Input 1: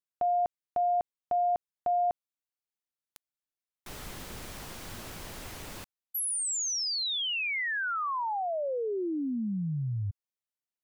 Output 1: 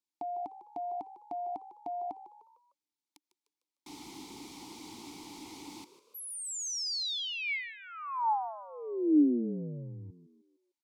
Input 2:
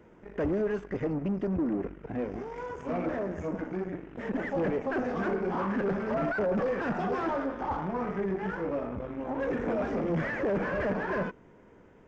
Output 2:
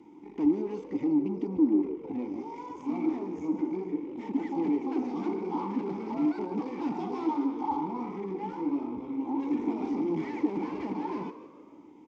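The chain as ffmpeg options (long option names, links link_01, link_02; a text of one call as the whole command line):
ffmpeg -i in.wav -filter_complex "[0:a]aexciter=amount=7:drive=8.7:freq=3700,asplit=2[link_01][link_02];[link_02]acompressor=threshold=-36dB:ratio=6:attack=0.19:release=47,volume=-0.5dB[link_03];[link_01][link_03]amix=inputs=2:normalize=0,asplit=3[link_04][link_05][link_06];[link_04]bandpass=frequency=300:width_type=q:width=8,volume=0dB[link_07];[link_05]bandpass=frequency=870:width_type=q:width=8,volume=-6dB[link_08];[link_06]bandpass=frequency=2240:width_type=q:width=8,volume=-9dB[link_09];[link_07][link_08][link_09]amix=inputs=3:normalize=0,highshelf=frequency=4600:gain=-7.5,asplit=5[link_10][link_11][link_12][link_13][link_14];[link_11]adelay=151,afreqshift=65,volume=-14dB[link_15];[link_12]adelay=302,afreqshift=130,volume=-20.7dB[link_16];[link_13]adelay=453,afreqshift=195,volume=-27.5dB[link_17];[link_14]adelay=604,afreqshift=260,volume=-34.2dB[link_18];[link_10][link_15][link_16][link_17][link_18]amix=inputs=5:normalize=0,volume=8dB" out.wav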